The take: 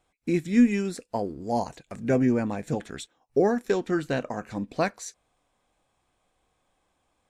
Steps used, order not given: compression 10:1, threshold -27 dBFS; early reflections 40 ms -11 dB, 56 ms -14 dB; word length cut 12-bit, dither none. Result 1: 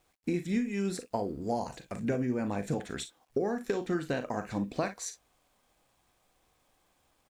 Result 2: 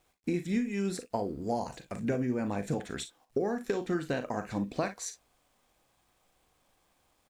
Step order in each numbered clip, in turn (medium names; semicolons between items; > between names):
compression > early reflections > word length cut; compression > word length cut > early reflections